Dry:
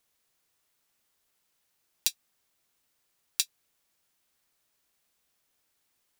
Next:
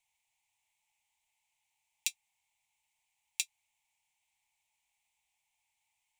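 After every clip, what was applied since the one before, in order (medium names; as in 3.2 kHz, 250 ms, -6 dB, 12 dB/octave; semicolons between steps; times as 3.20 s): FFT filter 110 Hz 0 dB, 460 Hz -25 dB, 870 Hz +14 dB, 1.4 kHz -23 dB, 2.2 kHz +12 dB, 4.8 kHz -3 dB, 7.4 kHz +6 dB, 14 kHz -6 dB; trim -8 dB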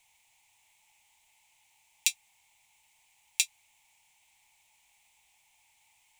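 loudness maximiser +17.5 dB; trim -3 dB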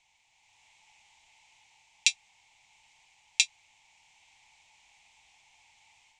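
low-pass 6.6 kHz 24 dB/octave; level rider gain up to 7 dB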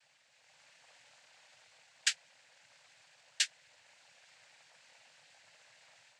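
bass shelf 450 Hz +3 dB; peak limiter -10 dBFS, peak gain reduction 7.5 dB; noise-vocoded speech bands 8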